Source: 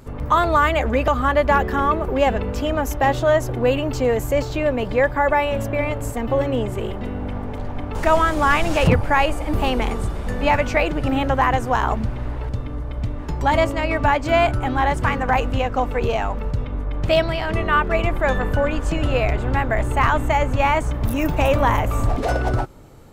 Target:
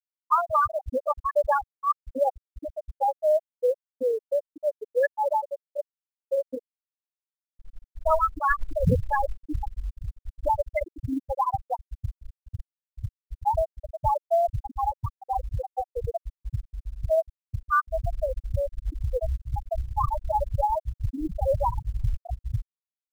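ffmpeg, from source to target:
-af "afftfilt=real='re*gte(hypot(re,im),0.891)':imag='im*gte(hypot(re,im),0.891)':win_size=1024:overlap=0.75,crystalizer=i=3.5:c=0,acrusher=bits=9:mode=log:mix=0:aa=0.000001,volume=0.596"

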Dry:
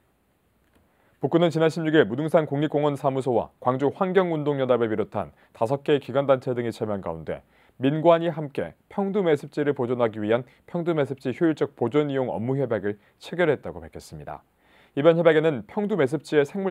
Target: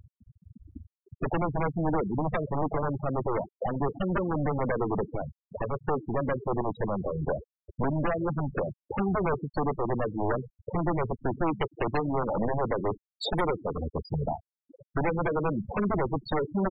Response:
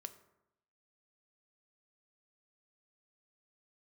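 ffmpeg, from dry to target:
-filter_complex "[0:a]acompressor=threshold=0.0316:ratio=12,equalizer=f=2100:w=0.92:g=-12,aeval=exprs='(mod(23.7*val(0)+1,2)-1)/23.7':c=same,aeval=exprs='0.0447*(cos(1*acos(clip(val(0)/0.0447,-1,1)))-cos(1*PI/2))+0.0224*(cos(2*acos(clip(val(0)/0.0447,-1,1)))-cos(2*PI/2))+0.00501*(cos(4*acos(clip(val(0)/0.0447,-1,1)))-cos(4*PI/2))+0.01*(cos(5*acos(clip(val(0)/0.0447,-1,1)))-cos(5*PI/2))+0.000891*(cos(8*acos(clip(val(0)/0.0447,-1,1)))-cos(8*PI/2))':c=same,asettb=1/sr,asplit=3[s0][s1][s2];[s0]atrim=end=11.464[s3];[s1]atrim=start=11.46:end=13.79,asetpts=PTS-STARTPTS,afade=t=in:d=0.004:c=qsin,afade=t=out:st=2.326:d=0.004:c=qsin,highshelf=f=2700:g=6.5[s4];[s2]atrim=start=13.786[s5];[s3][s4]acrossfade=d=0.004:c1=hsin:c2=qsin[s6];[s6][s5]acrossfade=d=0.004:c1=qsin:c2=hsin,acompressor=mode=upward:threshold=0.0158:ratio=2.5,asplit=4[s7][s8][s9][s10];[s8]adelay=91,afreqshift=-120,volume=0.178[s11];[s9]adelay=182,afreqshift=-240,volume=0.0661[s12];[s10]adelay=273,afreqshift=-360,volume=0.0243[s13];[s7][s11][s12][s13]amix=inputs=4:normalize=0,afftfilt=real='re*gte(hypot(re,im),0.0355)':imag='im*gte(hypot(re,im),0.0355)':win_size=1024:overlap=0.75,volume=2.24"

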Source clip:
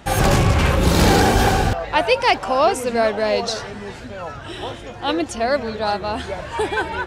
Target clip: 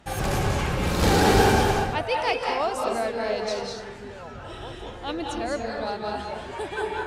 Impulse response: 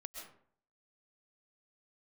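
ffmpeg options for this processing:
-filter_complex "[0:a]asettb=1/sr,asplit=3[s0][s1][s2];[s0]atrim=end=1.024[s3];[s1]atrim=start=1.02:end=1.63,asetpts=PTS-STARTPTS,afade=t=in:d=0.004:c=qsin,afade=t=out:st=0.606:d=0.004:c=qsin,acontrast=60[s4];[s2]atrim=start=1.626[s5];[s3][s4]acrossfade=d=0.004:c1=hsin:c2=qsin[s6];[s6][s5]acrossfade=d=0.004:c1=qsin:c2=hsin,asettb=1/sr,asplit=3[s7][s8][s9];[s7]atrim=end=4.324[s10];[s8]atrim=start=4.32:end=5.69,asetpts=PTS-STARTPTS,afade=t=in:d=0.004:c=qsin,afade=t=out:st=1.366:d=0.004:c=qsin,lowshelf=f=94:g=10.5[s11];[s9]atrim=start=5.686[s12];[s10][s11]acrossfade=d=0.004:c1=hsin:c2=qsin[s13];[s13][s12]acrossfade=d=0.004:c1=qsin:c2=hsin[s14];[1:a]atrim=start_sample=2205,afade=t=out:st=0.3:d=0.01,atrim=end_sample=13671,asetrate=29547,aresample=44100[s15];[s14][s15]afir=irnorm=-1:irlink=0,volume=0.473"

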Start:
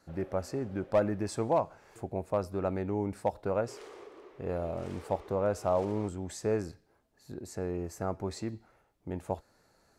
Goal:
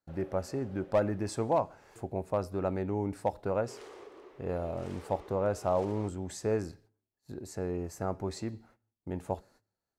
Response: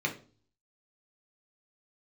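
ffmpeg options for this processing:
-filter_complex "[0:a]agate=range=0.0631:threshold=0.00112:ratio=16:detection=peak,asplit=2[s0][s1];[1:a]atrim=start_sample=2205,lowpass=3100[s2];[s1][s2]afir=irnorm=-1:irlink=0,volume=0.0596[s3];[s0][s3]amix=inputs=2:normalize=0"

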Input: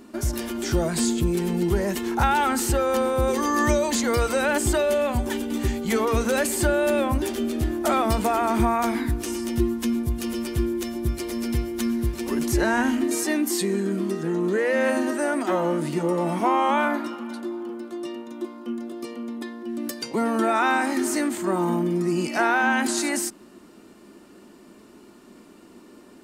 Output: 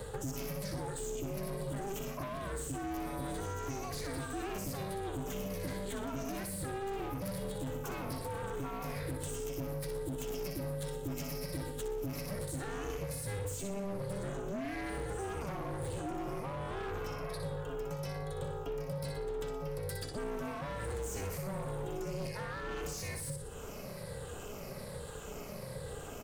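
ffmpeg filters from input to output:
-filter_complex "[0:a]afftfilt=real='re*pow(10,12/40*sin(2*PI*(0.81*log(max(b,1)*sr/1024/100)/log(2)-(-1.2)*(pts-256)/sr)))':imag='im*pow(10,12/40*sin(2*PI*(0.81*log(max(b,1)*sr/1024/100)/log(2)-(-1.2)*(pts-256)/sr)))':win_size=1024:overlap=0.75,highshelf=f=7900:g=8.5,bandreject=f=50:t=h:w=6,bandreject=f=100:t=h:w=6,bandreject=f=150:t=h:w=6,bandreject=f=200:t=h:w=6,bandreject=f=250:t=h:w=6,bandreject=f=300:t=h:w=6,bandreject=f=350:t=h:w=6,areverse,acompressor=threshold=0.0398:ratio=8,areverse,aecho=1:1:61|122|183|244:0.422|0.16|0.0609|0.0231,aeval=exprs='val(0)*sin(2*PI*200*n/s)':c=same,asoftclip=type=hard:threshold=0.0299,acrossover=split=91|350[s0][s1][s2];[s0]acompressor=threshold=0.002:ratio=4[s3];[s1]acompressor=threshold=0.00398:ratio=4[s4];[s2]acompressor=threshold=0.00282:ratio=4[s5];[s3][s4][s5]amix=inputs=3:normalize=0,volume=2.24"

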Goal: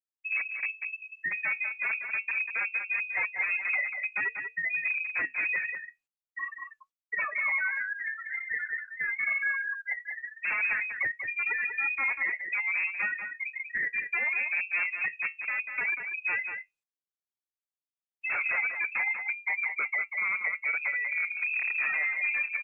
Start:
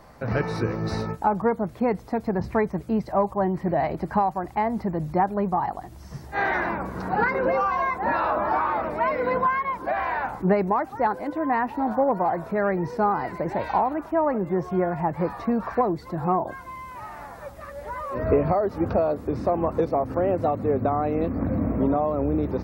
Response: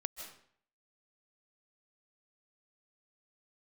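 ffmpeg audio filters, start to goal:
-filter_complex "[0:a]asettb=1/sr,asplit=3[s0][s1][s2];[s0]atrim=end=0.684[s3];[s1]atrim=start=0.68:end=1.75,asetpts=PTS-STARTPTS,afade=t=in:d=0.004:c=qsin,afade=t=out:st=1.066:d=0.004:c=qsin,aemphasis=mode=production:type=50fm[s4];[s2]atrim=start=1.746[s5];[s3][s4]acrossfade=d=0.004:c1=hsin:c2=qsin[s6];[s6][s5]acrossfade=d=0.004:c1=qsin:c2=hsin,afftfilt=real='re*gte(hypot(re,im),0.447)':imag='im*gte(hypot(re,im),0.447)':win_size=1024:overlap=0.75,tiltshelf=f=970:g=6.5,bandreject=f=50:t=h:w=6,bandreject=f=100:t=h:w=6,bandreject=f=150:t=h:w=6,bandreject=f=200:t=h:w=6,bandreject=f=250:t=h:w=6,bandreject=f=300:t=h:w=6,acrossover=split=310[s7][s8];[s8]asoftclip=type=tanh:threshold=0.0944[s9];[s7][s9]amix=inputs=2:normalize=0,flanger=delay=9.6:depth=6.6:regen=-54:speed=0.3:shape=triangular,aeval=exprs='0.0596*(abs(mod(val(0)/0.0596+3,4)-2)-1)':c=same,aecho=1:1:191:0.447,lowpass=f=2300:t=q:w=0.5098,lowpass=f=2300:t=q:w=0.6013,lowpass=f=2300:t=q:w=0.9,lowpass=f=2300:t=q:w=2.563,afreqshift=-2700" -ar 48000 -c:a libopus -b:a 48k

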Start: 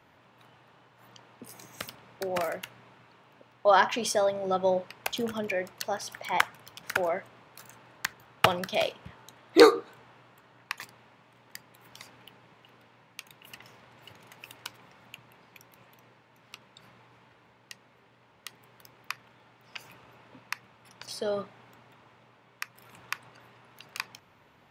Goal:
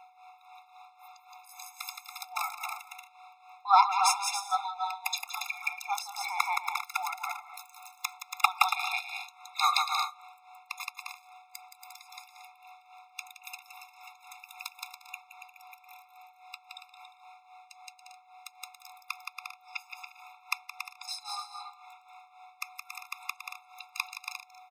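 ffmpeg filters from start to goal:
-filter_complex "[0:a]aecho=1:1:170|280.5|352.3|399|429.4:0.631|0.398|0.251|0.158|0.1,aeval=exprs='val(0)+0.00282*sin(2*PI*740*n/s)':c=same,tremolo=f=3.7:d=0.71,acrossover=split=1100[s0][s1];[s1]acontrast=90[s2];[s0][s2]amix=inputs=2:normalize=0,afftfilt=real='re*eq(mod(floor(b*sr/1024/690),2),1)':imag='im*eq(mod(floor(b*sr/1024/690),2),1)':win_size=1024:overlap=0.75"

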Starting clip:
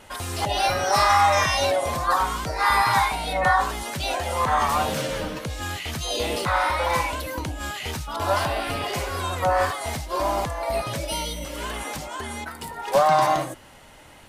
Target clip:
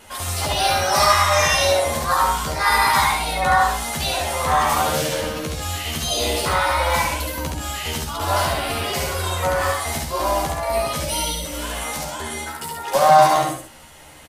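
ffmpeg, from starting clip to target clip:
-filter_complex "[0:a]highshelf=f=4800:g=7.5,asplit=2[s0][s1];[s1]adelay=13,volume=0.668[s2];[s0][s2]amix=inputs=2:normalize=0,asplit=2[s3][s4];[s4]aecho=0:1:69.97|131.2:0.708|0.355[s5];[s3][s5]amix=inputs=2:normalize=0,volume=0.891"

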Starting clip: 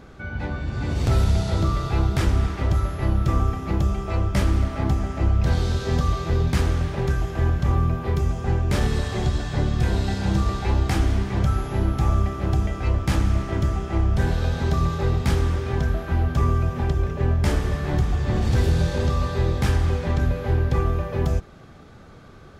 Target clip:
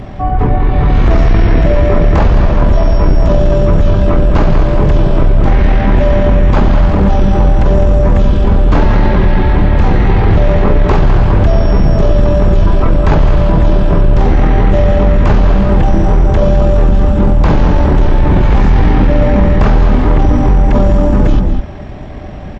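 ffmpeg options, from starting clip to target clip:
-filter_complex "[0:a]acrossover=split=3300[s0][s1];[s1]acompressor=threshold=0.00316:ratio=4:attack=1:release=60[s2];[s0][s2]amix=inputs=2:normalize=0,asplit=2[s3][s4];[s4]adelay=204.1,volume=0.447,highshelf=f=4000:g=-4.59[s5];[s3][s5]amix=inputs=2:normalize=0,asetrate=22050,aresample=44100,atempo=2,apsyclip=15,volume=0.668"

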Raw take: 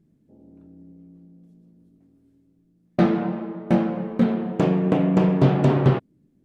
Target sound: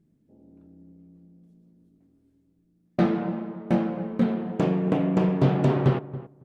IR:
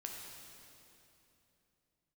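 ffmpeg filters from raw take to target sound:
-filter_complex "[0:a]asplit=2[s0][s1];[s1]adelay=277,lowpass=f=1000:p=1,volume=0.188,asplit=2[s2][s3];[s3]adelay=277,lowpass=f=1000:p=1,volume=0.17[s4];[s0][s2][s4]amix=inputs=3:normalize=0,volume=0.668"

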